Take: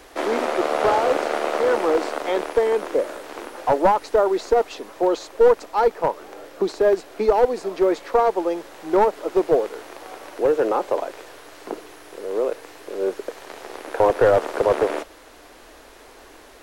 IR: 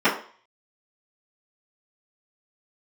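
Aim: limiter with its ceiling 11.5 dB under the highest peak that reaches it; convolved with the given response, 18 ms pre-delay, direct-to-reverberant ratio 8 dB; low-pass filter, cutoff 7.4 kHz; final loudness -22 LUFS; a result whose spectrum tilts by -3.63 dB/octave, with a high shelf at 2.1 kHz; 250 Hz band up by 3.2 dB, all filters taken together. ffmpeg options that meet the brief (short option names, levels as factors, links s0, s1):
-filter_complex "[0:a]lowpass=7400,equalizer=f=250:t=o:g=5,highshelf=f=2100:g=9,alimiter=limit=0.224:level=0:latency=1,asplit=2[s0][s1];[1:a]atrim=start_sample=2205,adelay=18[s2];[s1][s2]afir=irnorm=-1:irlink=0,volume=0.0422[s3];[s0][s3]amix=inputs=2:normalize=0,volume=1.12"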